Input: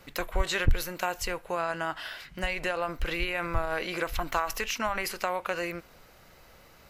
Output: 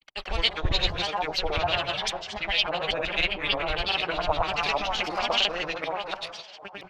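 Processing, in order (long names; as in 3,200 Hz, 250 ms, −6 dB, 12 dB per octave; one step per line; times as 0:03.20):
delay that plays each chunk backwards 565 ms, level −1 dB
parametric band 740 Hz +6 dB 0.44 octaves
noise gate −40 dBFS, range −39 dB
delay with a band-pass on its return 148 ms, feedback 80%, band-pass 770 Hz, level −20 dB
on a send at −8 dB: convolution reverb RT60 1.1 s, pre-delay 99 ms
on the sum: auto-filter low-pass sine 5.7 Hz 850–3,900 Hz
granular cloud, grains 20 per second, pitch spread up and down by 3 semitones
high shelf with overshoot 2,400 Hz +11 dB, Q 1.5
one half of a high-frequency compander encoder only
level −3 dB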